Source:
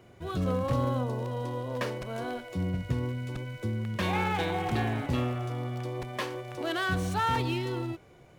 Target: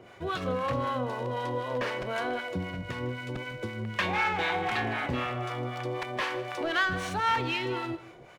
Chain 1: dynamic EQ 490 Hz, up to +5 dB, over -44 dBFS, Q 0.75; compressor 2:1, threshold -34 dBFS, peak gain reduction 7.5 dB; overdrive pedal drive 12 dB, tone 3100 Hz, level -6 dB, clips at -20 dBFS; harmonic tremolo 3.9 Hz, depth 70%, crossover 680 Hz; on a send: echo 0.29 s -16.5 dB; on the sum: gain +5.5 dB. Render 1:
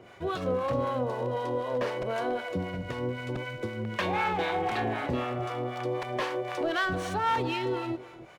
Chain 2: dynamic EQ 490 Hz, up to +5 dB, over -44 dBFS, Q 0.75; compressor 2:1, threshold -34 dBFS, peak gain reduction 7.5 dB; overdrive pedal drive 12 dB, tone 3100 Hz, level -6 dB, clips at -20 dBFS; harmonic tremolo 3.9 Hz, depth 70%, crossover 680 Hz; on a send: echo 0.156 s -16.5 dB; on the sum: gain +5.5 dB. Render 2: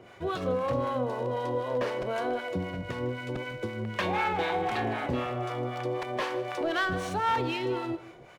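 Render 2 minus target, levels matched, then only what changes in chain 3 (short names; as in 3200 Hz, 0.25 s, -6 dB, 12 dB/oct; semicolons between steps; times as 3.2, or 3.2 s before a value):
2000 Hz band -3.5 dB
change: dynamic EQ 2000 Hz, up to +5 dB, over -44 dBFS, Q 0.75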